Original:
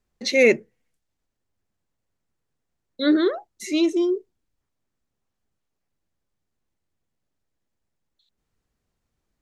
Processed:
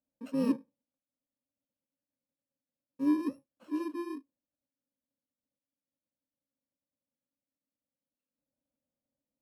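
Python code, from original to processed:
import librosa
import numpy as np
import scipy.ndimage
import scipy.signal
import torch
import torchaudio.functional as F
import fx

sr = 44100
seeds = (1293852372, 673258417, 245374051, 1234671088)

y = fx.bit_reversed(x, sr, seeds[0], block=64)
y = fx.double_bandpass(y, sr, hz=390.0, octaves=1.0)
y = y * librosa.db_to_amplitude(2.5)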